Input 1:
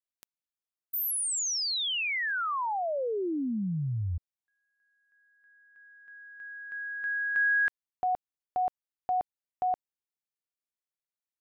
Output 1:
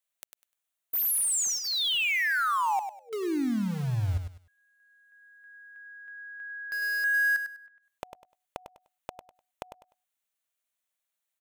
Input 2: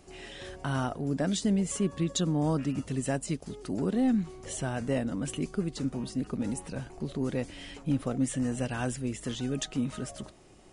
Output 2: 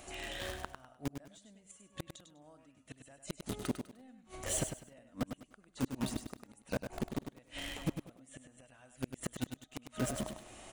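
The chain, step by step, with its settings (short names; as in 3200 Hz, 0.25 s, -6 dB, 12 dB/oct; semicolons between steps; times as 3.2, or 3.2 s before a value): thirty-one-band EQ 160 Hz -8 dB, 400 Hz -7 dB, 630 Hz +6 dB, 5000 Hz -10 dB; flipped gate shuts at -26 dBFS, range -33 dB; in parallel at -5.5 dB: requantised 6-bit, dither none; on the sum: hard clip -24 dBFS; on a send: feedback echo 0.1 s, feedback 22%, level -8 dB; on the sum: mismatched tape noise reduction encoder only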